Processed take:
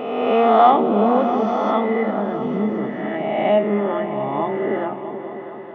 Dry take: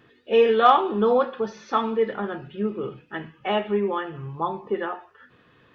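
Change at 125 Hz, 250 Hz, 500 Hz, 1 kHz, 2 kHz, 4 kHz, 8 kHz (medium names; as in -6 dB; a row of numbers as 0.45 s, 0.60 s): +5.5 dB, +8.5 dB, +4.0 dB, +5.0 dB, +2.5 dB, -1.5 dB, no reading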